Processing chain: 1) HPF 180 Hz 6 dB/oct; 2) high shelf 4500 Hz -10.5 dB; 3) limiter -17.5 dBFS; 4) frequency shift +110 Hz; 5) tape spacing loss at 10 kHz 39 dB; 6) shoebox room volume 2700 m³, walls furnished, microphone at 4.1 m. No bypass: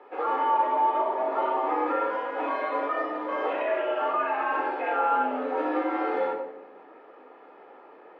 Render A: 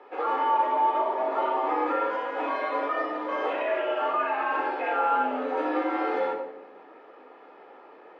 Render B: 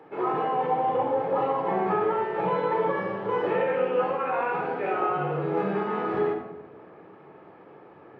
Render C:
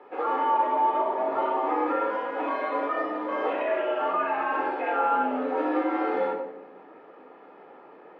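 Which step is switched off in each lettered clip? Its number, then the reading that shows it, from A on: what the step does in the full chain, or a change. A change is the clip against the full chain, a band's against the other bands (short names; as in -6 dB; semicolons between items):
2, 4 kHz band +3.0 dB; 4, 500 Hz band +4.5 dB; 1, 250 Hz band +2.5 dB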